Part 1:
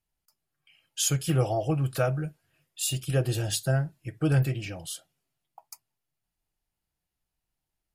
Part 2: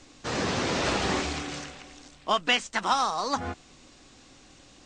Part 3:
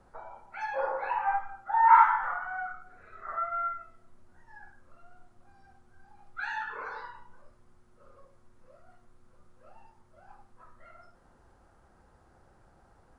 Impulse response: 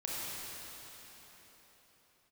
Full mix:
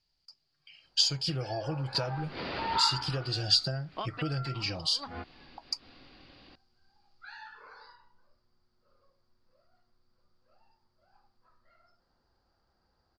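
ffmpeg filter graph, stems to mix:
-filter_complex "[0:a]acompressor=threshold=-33dB:ratio=8,volume=2dB,asplit=2[a][b];[1:a]lowpass=f=3k:w=0.5412,lowpass=f=3k:w=1.3066,acompressor=threshold=-33dB:ratio=6,adelay=1700,volume=-2dB[c];[2:a]adelay=850,volume=-13.5dB[d];[b]apad=whole_len=288995[e];[c][e]sidechaincompress=threshold=-50dB:ratio=8:attack=8.7:release=106[f];[a][f][d]amix=inputs=3:normalize=0,lowpass=f=4.7k:t=q:w=13"

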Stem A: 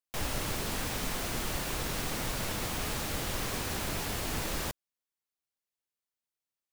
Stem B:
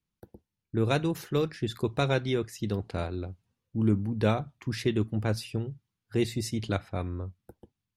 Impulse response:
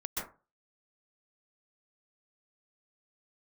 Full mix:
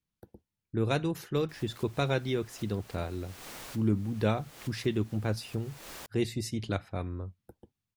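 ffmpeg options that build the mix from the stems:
-filter_complex "[0:a]lowshelf=f=230:g=-12,adelay=1350,volume=-8dB[a];[1:a]volume=-2.5dB,asplit=2[b][c];[c]apad=whole_len=356309[d];[a][d]sidechaincompress=threshold=-47dB:ratio=4:attack=21:release=214[e];[e][b]amix=inputs=2:normalize=0"

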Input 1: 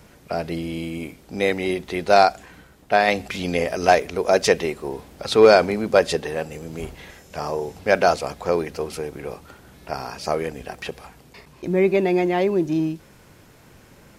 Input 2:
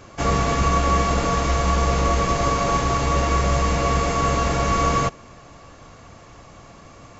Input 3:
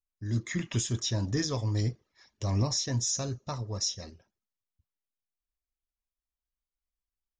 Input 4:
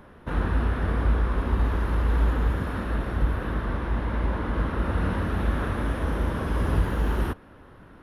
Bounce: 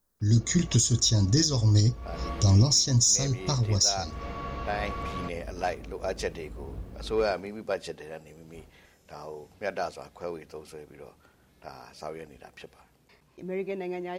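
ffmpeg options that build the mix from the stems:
-filter_complex "[0:a]adelay=1750,volume=-14.5dB[a];[1:a]lowpass=f=4.4k:w=0.5412,lowpass=f=4.4k:w=1.3066,adelay=200,volume=-16dB[b];[2:a]lowshelf=f=400:g=9.5,aexciter=amount=3.7:drive=6.9:freq=3.6k,volume=1.5dB,asplit=2[c][d];[3:a]afwtdn=0.0447,volume=-16.5dB[e];[d]apad=whole_len=326266[f];[b][f]sidechaincompress=threshold=-38dB:ratio=4:attack=16:release=209[g];[a][g][c][e]amix=inputs=4:normalize=0,alimiter=limit=-12.5dB:level=0:latency=1:release=388"

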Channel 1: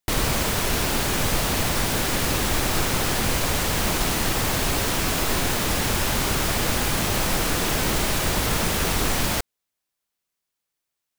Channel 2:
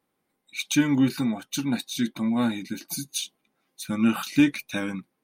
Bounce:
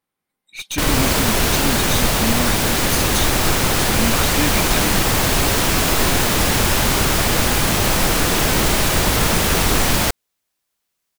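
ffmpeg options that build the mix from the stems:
-filter_complex "[0:a]adelay=700,volume=-5.5dB[a];[1:a]equalizer=f=340:t=o:w=2.5:g=-7.5,aeval=exprs='(tanh(25.1*val(0)+0.25)-tanh(0.25))/25.1':c=same,volume=-2dB[b];[a][b]amix=inputs=2:normalize=0,dynaudnorm=f=150:g=9:m=12.5dB"

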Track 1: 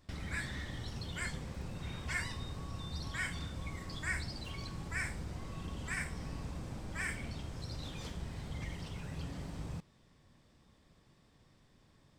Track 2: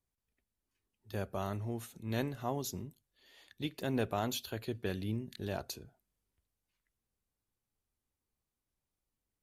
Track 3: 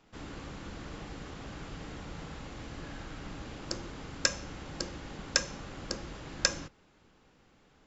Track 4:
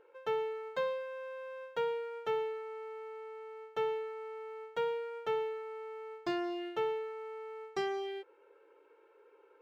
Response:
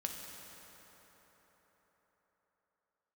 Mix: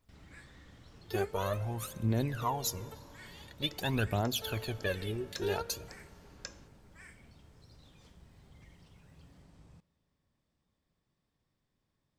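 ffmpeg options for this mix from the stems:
-filter_complex "[0:a]volume=-16.5dB,asplit=2[a][b];[b]volume=-19.5dB[c];[1:a]adynamicequalizer=threshold=0.00316:dfrequency=230:dqfactor=0.92:tfrequency=230:tqfactor=0.92:attack=5:release=100:ratio=0.375:range=3:mode=cutabove:tftype=bell,aphaser=in_gain=1:out_gain=1:delay=3:decay=0.77:speed=0.47:type=triangular,volume=2.5dB,asplit=3[d][e][f];[e]volume=-16.5dB[g];[2:a]volume=-18dB[h];[3:a]adelay=650,volume=-12dB[i];[f]apad=whole_len=452676[j];[i][j]sidechaingate=range=-33dB:threshold=-51dB:ratio=16:detection=peak[k];[4:a]atrim=start_sample=2205[l];[c][g]amix=inputs=2:normalize=0[m];[m][l]afir=irnorm=-1:irlink=0[n];[a][d][h][k][n]amix=inputs=5:normalize=0,alimiter=limit=-21dB:level=0:latency=1:release=248"

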